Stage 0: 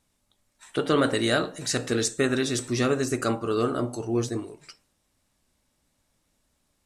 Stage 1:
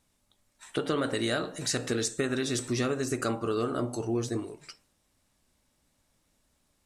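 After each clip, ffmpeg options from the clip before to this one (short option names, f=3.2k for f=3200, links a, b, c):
-af "acompressor=threshold=-26dB:ratio=4"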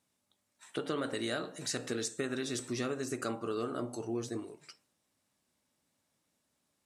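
-af "highpass=130,volume=-6dB"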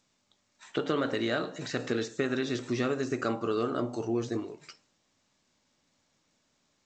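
-filter_complex "[0:a]acrossover=split=3500[a][b];[b]acompressor=threshold=-51dB:ratio=4:attack=1:release=60[c];[a][c]amix=inputs=2:normalize=0,volume=6dB" -ar 16000 -c:a g722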